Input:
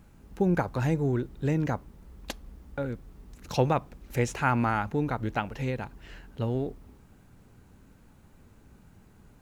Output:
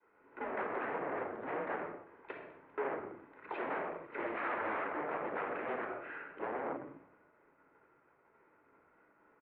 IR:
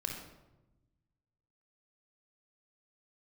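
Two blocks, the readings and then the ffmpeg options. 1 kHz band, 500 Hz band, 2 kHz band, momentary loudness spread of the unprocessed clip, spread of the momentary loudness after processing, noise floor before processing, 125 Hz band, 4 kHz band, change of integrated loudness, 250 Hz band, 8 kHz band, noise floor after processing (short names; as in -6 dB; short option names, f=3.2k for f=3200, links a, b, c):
-6.0 dB, -7.0 dB, -4.0 dB, 16 LU, 13 LU, -57 dBFS, -30.0 dB, -16.0 dB, -10.5 dB, -15.0 dB, under -30 dB, -70 dBFS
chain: -filter_complex "[0:a]bandreject=f=60:t=h:w=6,bandreject=f=120:t=h:w=6,bandreject=f=180:t=h:w=6,bandreject=f=240:t=h:w=6,bandreject=f=300:t=h:w=6,bandreject=f=360:t=h:w=6,bandreject=f=420:t=h:w=6,bandreject=f=480:t=h:w=6,agate=range=-33dB:threshold=-48dB:ratio=3:detection=peak,bandreject=f=890:w=12,asplit=2[a][b];[b]acompressor=threshold=-35dB:ratio=6,volume=-2.5dB[c];[a][c]amix=inputs=2:normalize=0,volume=30dB,asoftclip=hard,volume=-30dB,asplit=5[d][e][f][g][h];[e]adelay=198,afreqshift=-77,volume=-23.5dB[i];[f]adelay=396,afreqshift=-154,volume=-28.1dB[j];[g]adelay=594,afreqshift=-231,volume=-32.7dB[k];[h]adelay=792,afreqshift=-308,volume=-37.2dB[l];[d][i][j][k][l]amix=inputs=5:normalize=0[m];[1:a]atrim=start_sample=2205,afade=t=out:st=0.34:d=0.01,atrim=end_sample=15435[n];[m][n]afir=irnorm=-1:irlink=0,aresample=11025,aeval=exprs='0.0355*(abs(mod(val(0)/0.0355+3,4)-2)-1)':c=same,aresample=44100,highpass=f=510:t=q:w=0.5412,highpass=f=510:t=q:w=1.307,lowpass=f=2.3k:t=q:w=0.5176,lowpass=f=2.3k:t=q:w=0.7071,lowpass=f=2.3k:t=q:w=1.932,afreqshift=-140,volume=1.5dB"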